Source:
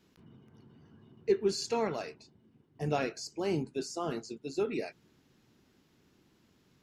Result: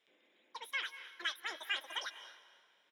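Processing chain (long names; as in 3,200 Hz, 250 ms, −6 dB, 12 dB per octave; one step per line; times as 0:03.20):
comb filter 1.3 ms, depth 60%
in parallel at −2.5 dB: brickwall limiter −29 dBFS, peak gain reduction 11.5 dB
on the sum: speech leveller
resonant band-pass 1,200 Hz, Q 5
high-frequency loss of the air 73 metres
on a send: feedback delay with all-pass diffusion 536 ms, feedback 42%, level −12 dB
on the sum: wrong playback speed 33 rpm record played at 78 rpm
one half of a high-frequency compander decoder only
level +8 dB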